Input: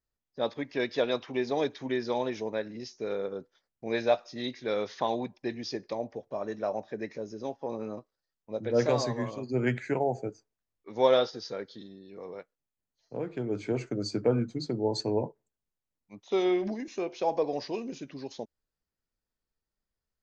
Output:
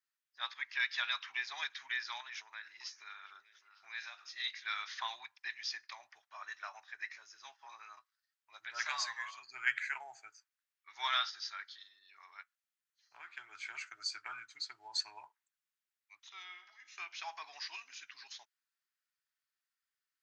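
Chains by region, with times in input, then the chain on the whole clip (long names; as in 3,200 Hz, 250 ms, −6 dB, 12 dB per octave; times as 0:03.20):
0:02.20–0:04.40: downward compressor 10 to 1, threshold −33 dBFS + echo through a band-pass that steps 303 ms, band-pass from 400 Hz, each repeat 1.4 octaves, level −9 dB
0:16.29–0:16.98: downward compressor 1.5 to 1, threshold −37 dBFS + tuned comb filter 53 Hz, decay 1.9 s + multiband upward and downward expander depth 40%
whole clip: inverse Chebyshev high-pass filter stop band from 540 Hz, stop band 50 dB; high-shelf EQ 2,100 Hz −10.5 dB; level +9 dB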